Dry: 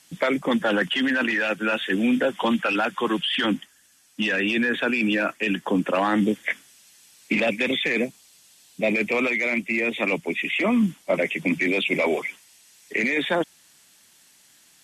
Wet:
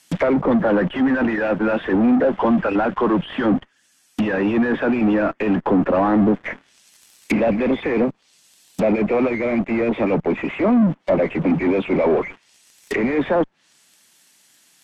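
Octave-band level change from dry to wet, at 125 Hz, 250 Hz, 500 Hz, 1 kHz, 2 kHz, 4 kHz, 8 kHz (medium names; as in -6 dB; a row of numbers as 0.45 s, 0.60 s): +8.5 dB, +6.5 dB, +6.5 dB, +4.5 dB, -4.5 dB, -11.0 dB, no reading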